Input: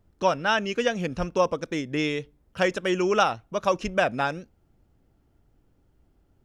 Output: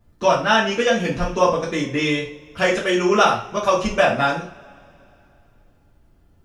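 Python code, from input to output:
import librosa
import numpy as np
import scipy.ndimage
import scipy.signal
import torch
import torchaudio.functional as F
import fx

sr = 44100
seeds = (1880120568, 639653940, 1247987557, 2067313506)

y = fx.rev_double_slope(x, sr, seeds[0], early_s=0.37, late_s=2.9, knee_db=-28, drr_db=-6.5)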